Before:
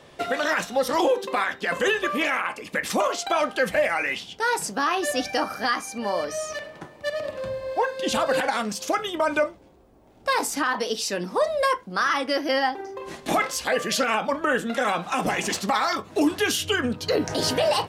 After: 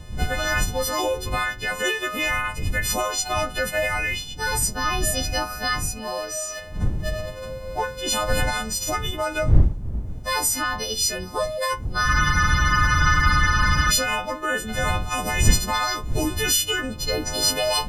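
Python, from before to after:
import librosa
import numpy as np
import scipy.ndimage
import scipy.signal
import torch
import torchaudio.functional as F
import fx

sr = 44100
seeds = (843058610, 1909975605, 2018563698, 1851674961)

y = fx.freq_snap(x, sr, grid_st=3)
y = fx.dmg_wind(y, sr, seeds[0], corner_hz=81.0, level_db=-23.0)
y = fx.spec_freeze(y, sr, seeds[1], at_s=12.1, hold_s=1.8)
y = F.gain(torch.from_numpy(y), -4.0).numpy()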